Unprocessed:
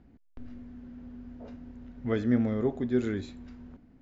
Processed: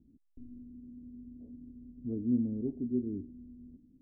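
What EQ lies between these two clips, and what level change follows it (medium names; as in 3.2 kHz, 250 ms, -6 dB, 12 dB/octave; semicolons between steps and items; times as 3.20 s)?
four-pole ladder low-pass 350 Hz, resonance 45%; 0.0 dB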